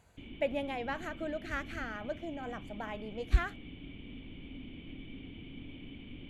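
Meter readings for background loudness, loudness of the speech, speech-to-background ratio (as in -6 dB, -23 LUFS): -48.0 LUFS, -37.5 LUFS, 10.5 dB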